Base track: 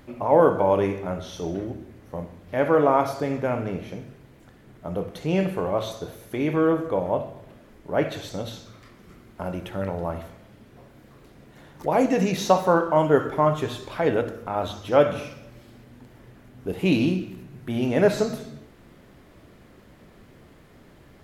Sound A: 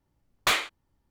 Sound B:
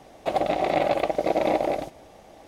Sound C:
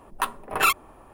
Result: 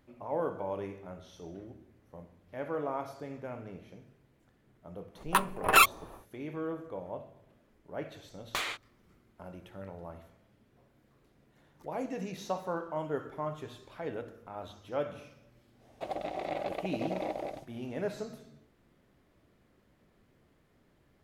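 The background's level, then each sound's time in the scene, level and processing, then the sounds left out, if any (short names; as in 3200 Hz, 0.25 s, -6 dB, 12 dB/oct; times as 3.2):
base track -16 dB
5.13 add C, fades 0.10 s
8.08 add A -0.5 dB + compressor 12:1, threshold -29 dBFS
15.75 add B -13 dB, fades 0.10 s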